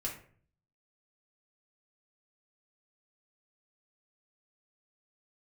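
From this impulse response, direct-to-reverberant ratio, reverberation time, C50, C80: -3.0 dB, 0.50 s, 7.5 dB, 12.0 dB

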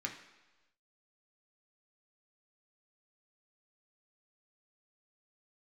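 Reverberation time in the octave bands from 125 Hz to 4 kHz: 1.0, 1.0, 1.1, 1.1, 1.1, 1.2 s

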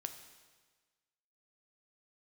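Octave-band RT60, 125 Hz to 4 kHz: 1.4, 1.4, 1.4, 1.4, 1.4, 1.4 s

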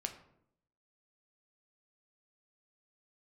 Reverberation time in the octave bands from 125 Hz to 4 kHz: 0.90, 0.85, 0.80, 0.65, 0.55, 0.40 s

